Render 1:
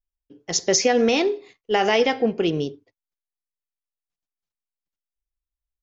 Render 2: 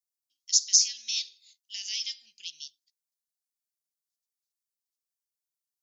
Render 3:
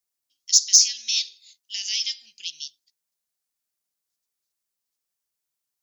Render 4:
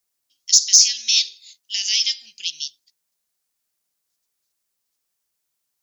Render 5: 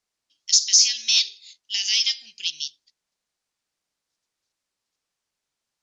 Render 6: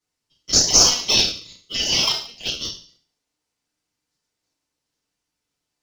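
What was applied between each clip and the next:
inverse Chebyshev high-pass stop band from 1300 Hz, stop band 60 dB; in parallel at +1.5 dB: limiter -19 dBFS, peak gain reduction 10 dB; on the sum: gain -1.5 dB
soft clip -9 dBFS, distortion -21 dB; gain +7 dB
maximiser +7.5 dB; gain -1 dB
in parallel at -12 dB: hard clip -14 dBFS, distortion -7 dB; on the sum: air absorption 78 m
FDN reverb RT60 0.48 s, low-frequency decay 1.6×, high-frequency decay 1×, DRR -7 dB; in parallel at -10.5 dB: decimation with a swept rate 39×, swing 100% 0.81 Hz; on the sum: gain -6 dB

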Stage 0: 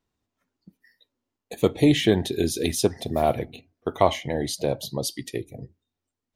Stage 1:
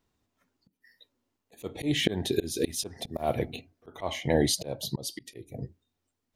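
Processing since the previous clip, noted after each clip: auto swell 0.338 s; gain +3.5 dB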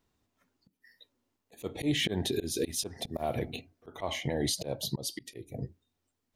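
limiter -20 dBFS, peak gain reduction 10 dB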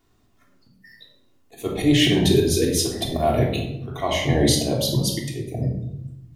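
reverb RT60 0.85 s, pre-delay 3 ms, DRR -2 dB; gain +7.5 dB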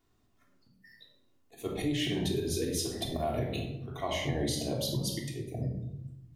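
compressor, threshold -19 dBFS, peak gain reduction 7 dB; gain -8.5 dB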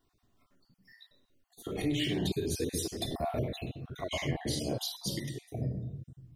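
random spectral dropouts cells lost 26%

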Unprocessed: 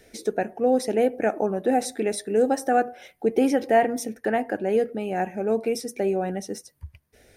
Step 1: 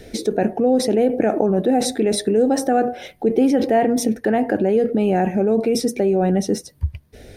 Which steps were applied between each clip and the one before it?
tilt shelf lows +6 dB, about 630 Hz; in parallel at +3 dB: negative-ratio compressor -28 dBFS, ratio -1; on the sum: bell 3800 Hz +6 dB 0.89 oct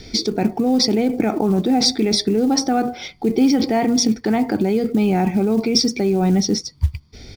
synth low-pass 4900 Hz, resonance Q 6.2; comb 0.9 ms, depth 64%; short-mantissa float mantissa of 4-bit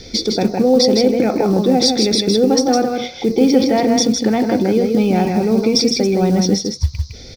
small resonant body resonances 520/3500 Hz, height 12 dB, ringing for 65 ms; band noise 4000–6000 Hz -46 dBFS; on a send: echo 0.159 s -4.5 dB; on the sum: gain +1 dB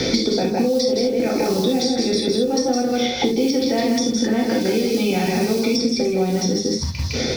compressor, threshold -21 dBFS, peak gain reduction 13 dB; reverb, pre-delay 3 ms, DRR -1 dB; three-band squash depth 100%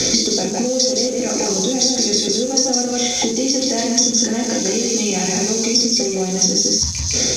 switching spikes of -23 dBFS; synth low-pass 6400 Hz, resonance Q 14; gain -1.5 dB

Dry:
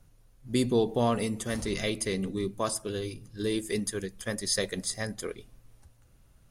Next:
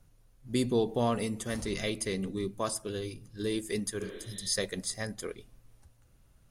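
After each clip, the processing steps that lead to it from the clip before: spectral repair 4.04–4.45, 210–4100 Hz both; gain -2.5 dB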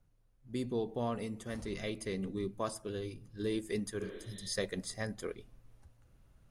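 high shelf 3800 Hz -8.5 dB; vocal rider within 4 dB 2 s; gain -4.5 dB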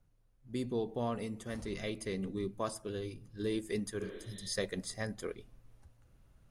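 nothing audible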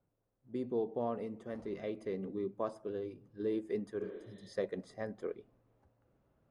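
band-pass 490 Hz, Q 0.77; gain +1.5 dB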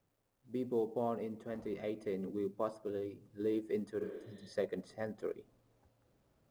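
companded quantiser 8-bit

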